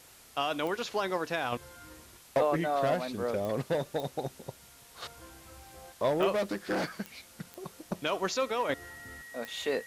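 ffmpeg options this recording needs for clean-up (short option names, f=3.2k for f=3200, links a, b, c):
-af "adeclick=t=4,bandreject=f=1.9k:w=30,afwtdn=0.002"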